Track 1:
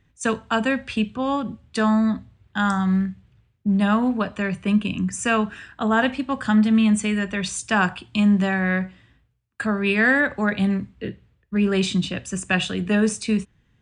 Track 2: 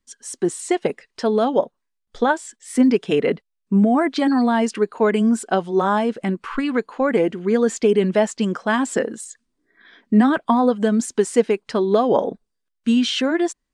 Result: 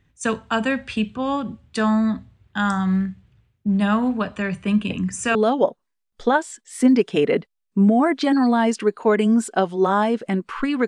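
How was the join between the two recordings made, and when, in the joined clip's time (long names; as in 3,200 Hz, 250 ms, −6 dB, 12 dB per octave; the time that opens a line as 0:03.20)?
track 1
0:04.84: mix in track 2 from 0:00.79 0.51 s −15 dB
0:05.35: continue with track 2 from 0:01.30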